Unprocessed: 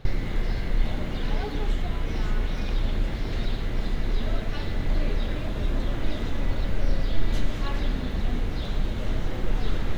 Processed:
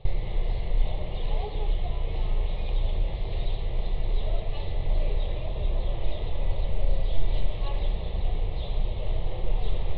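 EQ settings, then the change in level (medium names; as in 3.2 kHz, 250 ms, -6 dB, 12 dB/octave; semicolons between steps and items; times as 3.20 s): steep low-pass 3.9 kHz 48 dB/octave; static phaser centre 620 Hz, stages 4; 0.0 dB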